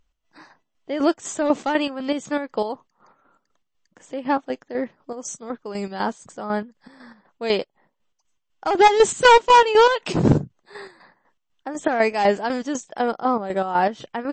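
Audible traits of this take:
chopped level 4 Hz, depth 60%, duty 50%
MP3

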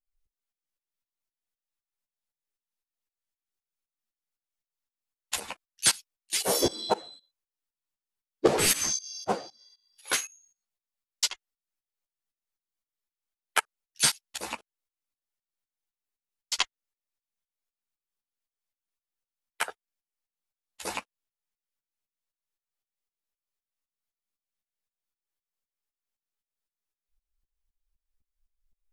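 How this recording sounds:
tremolo saw up 3.9 Hz, depth 95%
a shimmering, thickened sound

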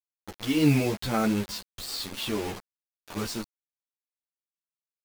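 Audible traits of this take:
a quantiser's noise floor 6 bits, dither none
a shimmering, thickened sound

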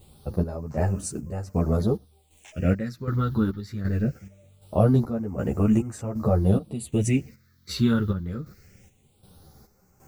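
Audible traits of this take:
a quantiser's noise floor 10 bits, dither triangular
phaser sweep stages 6, 0.22 Hz, lowest notch 650–3,700 Hz
chopped level 1.3 Hz, depth 65%, duty 55%
a shimmering, thickened sound

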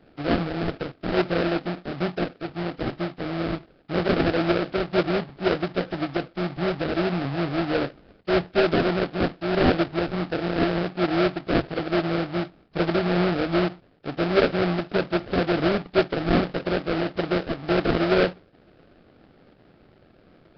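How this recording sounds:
aliases and images of a low sample rate 1,000 Hz, jitter 20%
Nellymoser

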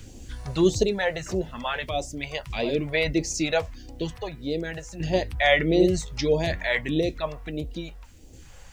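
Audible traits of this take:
phaser sweep stages 2, 1.6 Hz, lowest notch 260–1,400 Hz
sample-and-hold tremolo 1.2 Hz, depth 70%
a quantiser's noise floor 12 bits, dither none

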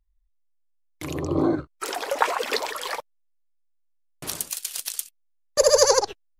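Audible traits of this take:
background noise floor −67 dBFS
spectral slope −3.5 dB per octave

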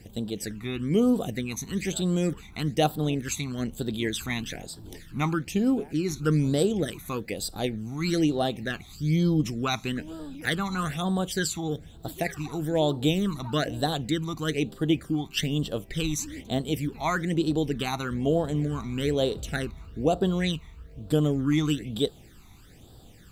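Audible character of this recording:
phaser sweep stages 12, 1.1 Hz, lowest notch 510–2,200 Hz
a quantiser's noise floor 12 bits, dither none

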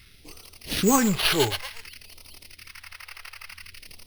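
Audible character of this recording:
aliases and images of a low sample rate 7,300 Hz, jitter 0%
phaser sweep stages 2, 0.55 Hz, lowest notch 200–1,600 Hz

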